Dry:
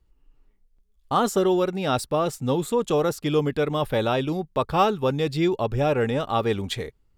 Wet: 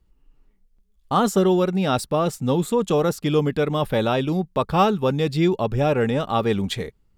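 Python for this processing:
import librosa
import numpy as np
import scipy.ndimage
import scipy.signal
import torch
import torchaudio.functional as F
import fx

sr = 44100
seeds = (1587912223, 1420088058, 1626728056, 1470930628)

y = fx.peak_eq(x, sr, hz=190.0, db=7.0, octaves=0.48)
y = y * 10.0 ** (1.5 / 20.0)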